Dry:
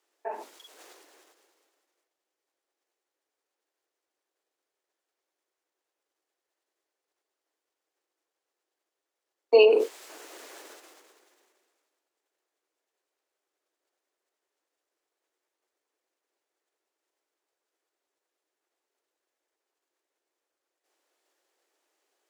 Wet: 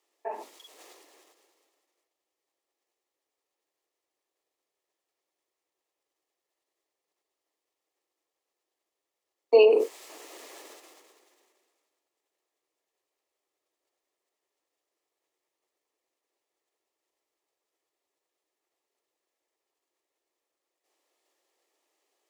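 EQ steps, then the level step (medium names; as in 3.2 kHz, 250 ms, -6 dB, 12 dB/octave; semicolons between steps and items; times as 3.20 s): band-stop 1.5 kHz, Q 5.3; dynamic bell 3.5 kHz, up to -6 dB, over -44 dBFS, Q 1.4; 0.0 dB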